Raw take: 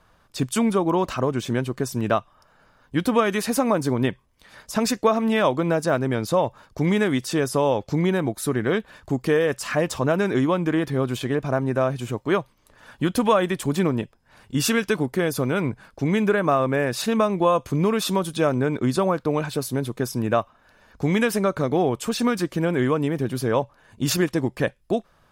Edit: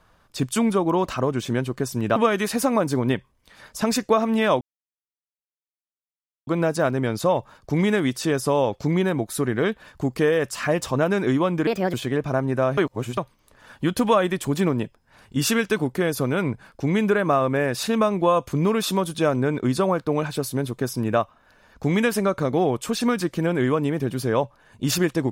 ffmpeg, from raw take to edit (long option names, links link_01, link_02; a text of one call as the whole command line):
ffmpeg -i in.wav -filter_complex "[0:a]asplit=7[link_01][link_02][link_03][link_04][link_05][link_06][link_07];[link_01]atrim=end=2.162[link_08];[link_02]atrim=start=3.098:end=5.55,asetpts=PTS-STARTPTS,afade=type=out:start_time=2.448:duration=0.004:curve=hsin,apad=pad_dur=1.86[link_09];[link_03]atrim=start=5.55:end=10.754,asetpts=PTS-STARTPTS,afade=type=in:duration=0.004:curve=hsin[link_10];[link_04]atrim=start=10.75:end=11.12,asetpts=PTS-STARTPTS,asetrate=61740,aresample=44100[link_11];[link_05]atrim=start=11.116:end=11.962[link_12];[link_06]atrim=start=11.958:end=12.362,asetpts=PTS-STARTPTS,areverse[link_13];[link_07]atrim=start=12.358[link_14];[link_09][link_10]concat=n=2:v=0:a=1[link_15];[link_08][link_15]acrossfade=duration=0.004:curve1=hsin:curve2=hsin[link_16];[link_16][link_11]acrossfade=duration=0.004:curve1=hsin:curve2=hsin[link_17];[link_17][link_12]acrossfade=duration=0.004:curve1=hsin:curve2=hsin[link_18];[link_18][link_13]acrossfade=duration=0.004:curve1=hsin:curve2=hsin[link_19];[link_19][link_14]acrossfade=duration=0.004:curve1=hsin:curve2=hsin" out.wav